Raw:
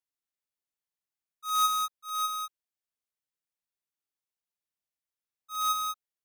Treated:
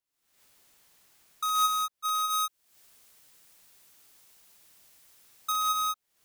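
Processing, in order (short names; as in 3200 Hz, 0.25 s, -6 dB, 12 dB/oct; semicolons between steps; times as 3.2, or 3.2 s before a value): recorder AGC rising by 72 dB/s; 2.3–5.52 high shelf 4500 Hz +4.5 dB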